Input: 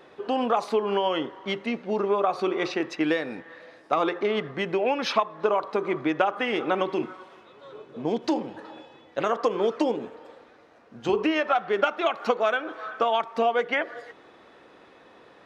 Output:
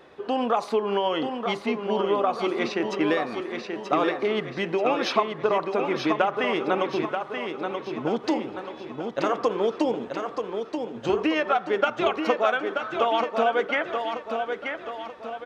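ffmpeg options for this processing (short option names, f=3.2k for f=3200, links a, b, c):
-af "equalizer=f=61:t=o:w=0.94:g=8.5,aecho=1:1:932|1864|2796|3728|4660|5592:0.501|0.236|0.111|0.052|0.0245|0.0115"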